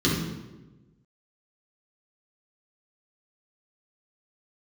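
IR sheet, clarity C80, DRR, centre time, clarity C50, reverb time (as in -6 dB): 5.0 dB, -6.5 dB, 63 ms, 1.0 dB, 1.1 s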